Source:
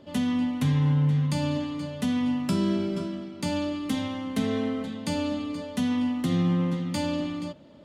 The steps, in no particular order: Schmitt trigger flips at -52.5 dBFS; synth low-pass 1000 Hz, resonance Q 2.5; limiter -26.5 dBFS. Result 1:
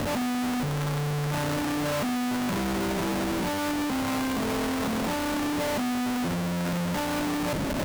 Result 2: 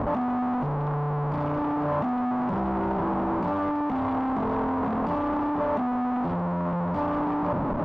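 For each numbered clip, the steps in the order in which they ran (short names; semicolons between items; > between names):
synth low-pass > Schmitt trigger > limiter; Schmitt trigger > limiter > synth low-pass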